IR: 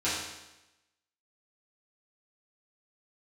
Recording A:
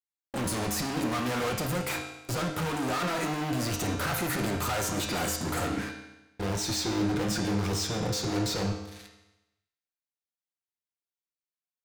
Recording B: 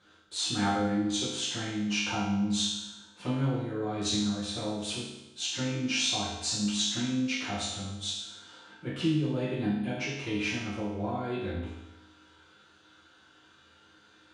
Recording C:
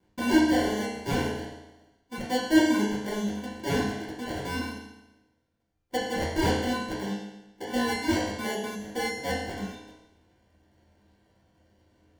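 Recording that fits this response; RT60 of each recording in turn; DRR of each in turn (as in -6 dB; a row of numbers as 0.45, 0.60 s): B; 0.95, 0.95, 0.95 s; 1.0, -11.5, -7.0 dB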